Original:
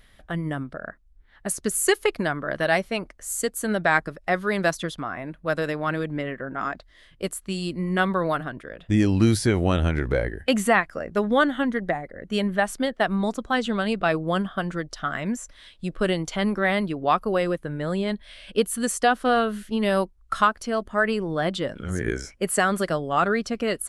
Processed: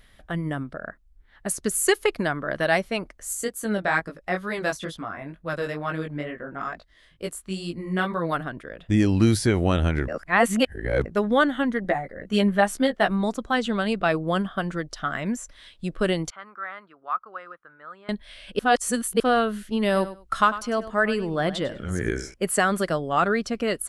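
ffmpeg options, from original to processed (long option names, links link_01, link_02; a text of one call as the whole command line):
ffmpeg -i in.wav -filter_complex "[0:a]asplit=3[link_01][link_02][link_03];[link_01]afade=type=out:start_time=3.33:duration=0.02[link_04];[link_02]flanger=delay=17.5:depth=4:speed=2.2,afade=type=in:start_time=3.33:duration=0.02,afade=type=out:start_time=8.31:duration=0.02[link_05];[link_03]afade=type=in:start_time=8.31:duration=0.02[link_06];[link_04][link_05][link_06]amix=inputs=3:normalize=0,asettb=1/sr,asplit=3[link_07][link_08][link_09];[link_07]atrim=end=11.834[link_10];[link_08]atrim=start=11.83:end=13.11,asetpts=PTS-STARTPTS,afade=type=in:duration=0.004:curve=qsin,afade=type=out:start_time=1.276:duration=0.004:curve=qsin,asplit=2[link_11][link_12];[link_12]adelay=15,volume=-3.5dB[link_13];[link_11][link_13]amix=inputs=2:normalize=0,atrim=end_sample=56448[link_14];[link_09]atrim=start=13.106[link_15];[link_10][link_14]acrossfade=duration=0.004:curve1=hsin:curve2=qsin[link_16];[link_16][link_15]acrossfade=duration=0.004:curve1=qsin:curve2=hsin,asettb=1/sr,asplit=3[link_17][link_18][link_19];[link_17]atrim=end=16.304[link_20];[link_18]atrim=start=16.3:end=18.09,asetpts=PTS-STARTPTS,afade=type=in:duration=0.004:curve=qsin,afade=type=out:start_time=1.786:duration=0.004:curve=qsin,bandpass=frequency=1300:width_type=q:width=5.7[link_21];[link_19]atrim=start=18.086[link_22];[link_20][link_21]acrossfade=duration=0.004:curve1=hsin:curve2=qsin[link_23];[link_23][link_22]acrossfade=duration=0.004:curve1=qsin:curve2=hsin,asettb=1/sr,asplit=3[link_24][link_25][link_26];[link_24]atrim=end=19.854[link_27];[link_25]atrim=start=19.85:end=22.34,asetpts=PTS-STARTPTS,afade=type=in:duration=0.004:curve=qsin,afade=type=out:start_time=2.486:duration=0.004:curve=qsin,aecho=1:1:99|198:0.2|0.0359,atrim=end_sample=109809[link_28];[link_26]atrim=start=22.336[link_29];[link_27][link_28]acrossfade=duration=0.004:curve1=hsin:curve2=qsin[link_30];[link_30][link_29]acrossfade=duration=0.004:curve1=qsin:curve2=hsin,asplit=5[link_31][link_32][link_33][link_34][link_35];[link_31]atrim=end=10.082[link_36];[link_32]atrim=start=10.078:end=11.052,asetpts=PTS-STARTPTS,areverse[link_37];[link_33]atrim=start=11.048:end=18.592[link_38];[link_34]atrim=start=18.588:end=19.202,asetpts=PTS-STARTPTS,areverse[link_39];[link_35]atrim=start=19.198[link_40];[link_36][link_37]acrossfade=duration=0.004:curve1=hsin:curve2=hsin[link_41];[link_41][link_38]acrossfade=duration=0.004:curve1=hsin:curve2=hsin[link_42];[link_42][link_39]acrossfade=duration=0.004:curve1=hsin:curve2=hsin[link_43];[link_43][link_40]acrossfade=duration=0.004:curve1=hsin:curve2=hsin" out.wav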